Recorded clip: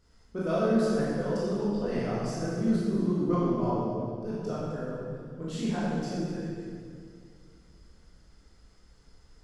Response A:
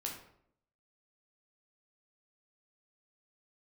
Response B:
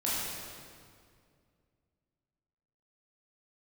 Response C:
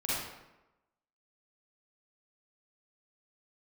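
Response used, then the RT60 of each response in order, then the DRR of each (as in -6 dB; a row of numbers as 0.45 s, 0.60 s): B; 0.70 s, 2.2 s, 1.0 s; -1.0 dB, -8.5 dB, -9.0 dB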